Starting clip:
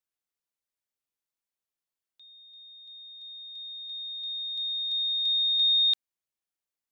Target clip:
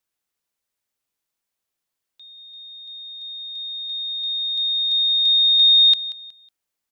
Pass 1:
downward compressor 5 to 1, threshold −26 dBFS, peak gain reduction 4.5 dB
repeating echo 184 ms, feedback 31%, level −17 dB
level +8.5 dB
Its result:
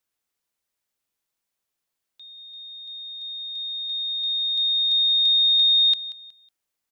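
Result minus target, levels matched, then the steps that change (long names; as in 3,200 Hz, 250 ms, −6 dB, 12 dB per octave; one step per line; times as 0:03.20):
downward compressor: peak gain reduction +4.5 dB
remove: downward compressor 5 to 1, threshold −26 dBFS, peak gain reduction 4.5 dB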